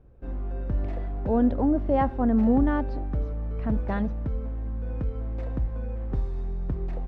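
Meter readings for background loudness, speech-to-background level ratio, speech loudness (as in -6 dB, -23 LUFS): -32.5 LUFS, 7.0 dB, -25.5 LUFS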